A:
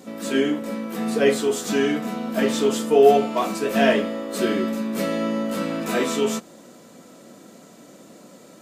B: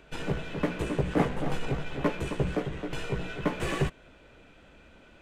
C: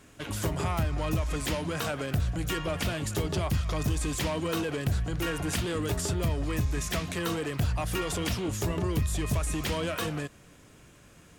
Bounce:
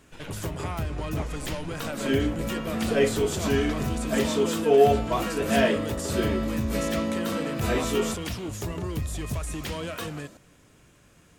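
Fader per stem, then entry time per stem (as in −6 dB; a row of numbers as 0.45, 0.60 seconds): −4.0, −10.0, −2.5 decibels; 1.75, 0.00, 0.00 seconds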